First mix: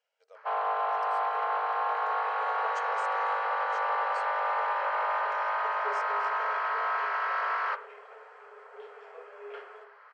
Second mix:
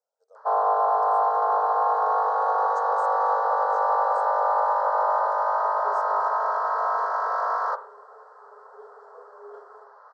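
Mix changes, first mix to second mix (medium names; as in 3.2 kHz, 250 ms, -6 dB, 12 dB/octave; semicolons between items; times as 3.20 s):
first sound +10.0 dB; master: add Butterworth band-stop 2.5 kHz, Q 0.51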